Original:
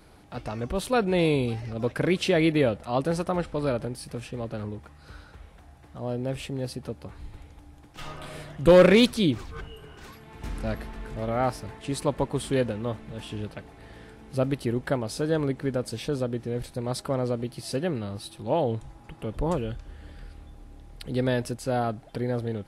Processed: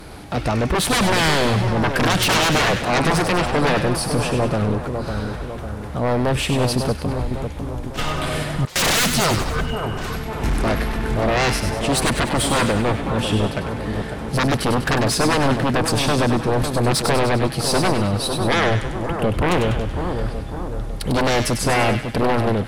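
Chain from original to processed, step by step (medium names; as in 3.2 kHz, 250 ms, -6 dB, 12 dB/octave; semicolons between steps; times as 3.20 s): sine folder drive 18 dB, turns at -9 dBFS; two-band feedback delay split 1.4 kHz, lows 551 ms, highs 98 ms, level -6.5 dB; 8.65–9.46 s: gate with hold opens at -4 dBFS; trim -6 dB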